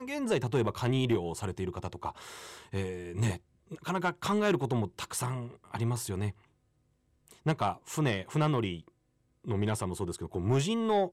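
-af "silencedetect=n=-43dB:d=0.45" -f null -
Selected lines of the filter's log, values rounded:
silence_start: 6.31
silence_end: 7.28 | silence_duration: 0.97
silence_start: 8.88
silence_end: 9.45 | silence_duration: 0.57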